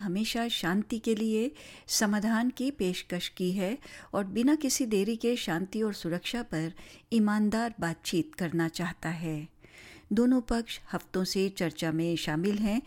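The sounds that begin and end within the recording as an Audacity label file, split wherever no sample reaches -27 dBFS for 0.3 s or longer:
1.910000	3.740000	sound
4.140000	6.680000	sound
7.120000	9.370000	sound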